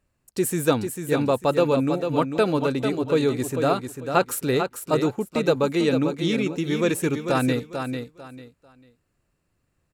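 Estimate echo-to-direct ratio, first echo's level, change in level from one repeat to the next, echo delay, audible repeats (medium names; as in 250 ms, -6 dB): -6.5 dB, -7.0 dB, -12.5 dB, 446 ms, 3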